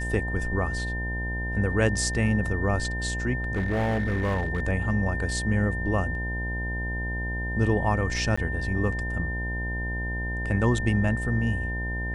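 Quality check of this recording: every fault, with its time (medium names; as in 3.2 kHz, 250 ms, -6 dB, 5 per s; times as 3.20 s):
buzz 60 Hz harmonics 17 -31 dBFS
whine 1.8 kHz -32 dBFS
3.56–4.64 s: clipped -21.5 dBFS
8.36–8.38 s: dropout 15 ms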